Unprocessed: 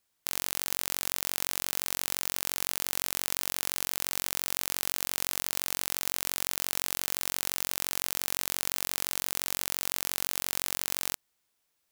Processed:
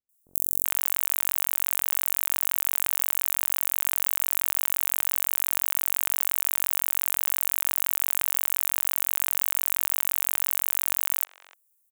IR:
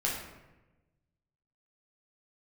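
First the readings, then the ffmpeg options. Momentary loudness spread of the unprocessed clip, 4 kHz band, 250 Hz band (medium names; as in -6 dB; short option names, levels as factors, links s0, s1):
0 LU, -15.0 dB, under -10 dB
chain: -filter_complex "[0:a]acrossover=split=540|3400[s0][s1][s2];[s2]adelay=90[s3];[s1]adelay=390[s4];[s0][s4][s3]amix=inputs=3:normalize=0,aexciter=amount=8.4:drive=5.8:freq=6800,volume=0.266"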